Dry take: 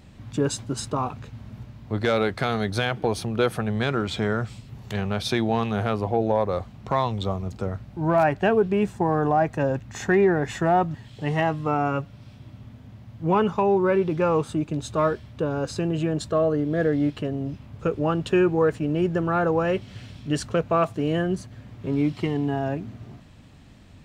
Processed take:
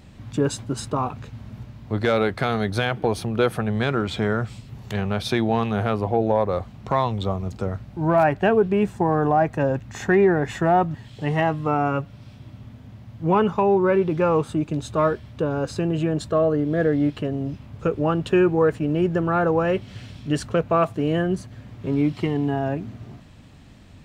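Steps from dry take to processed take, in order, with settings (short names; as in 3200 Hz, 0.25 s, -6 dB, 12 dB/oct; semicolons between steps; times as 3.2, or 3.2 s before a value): dynamic EQ 6100 Hz, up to -4 dB, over -46 dBFS, Q 0.74; gain +2 dB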